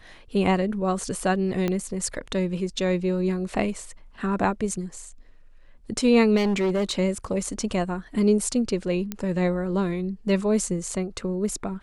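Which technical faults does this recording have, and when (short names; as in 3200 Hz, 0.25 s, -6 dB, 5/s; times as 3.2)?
1.68 pop -13 dBFS
6.36–6.99 clipped -19.5 dBFS
9.12 pop -14 dBFS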